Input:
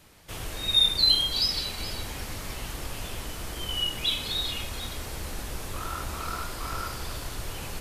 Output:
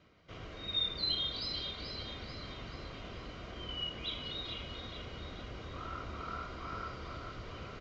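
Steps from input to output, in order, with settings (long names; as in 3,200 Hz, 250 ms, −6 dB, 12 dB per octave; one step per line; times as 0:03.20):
reversed playback
upward compression, threshold −47 dBFS
reversed playback
high-frequency loss of the air 230 metres
notch comb filter 860 Hz
on a send: repeating echo 437 ms, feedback 48%, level −7 dB
on the sum: downsampling to 16,000 Hz
level −6 dB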